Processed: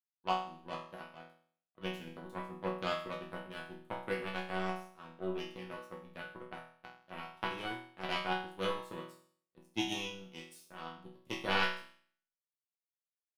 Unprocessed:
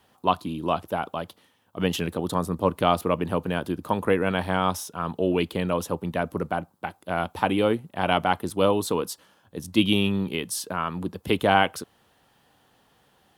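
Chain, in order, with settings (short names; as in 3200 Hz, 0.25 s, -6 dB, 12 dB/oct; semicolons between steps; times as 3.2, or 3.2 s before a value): power-law curve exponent 2; resonator bank B2 sus4, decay 0.53 s; gain +12 dB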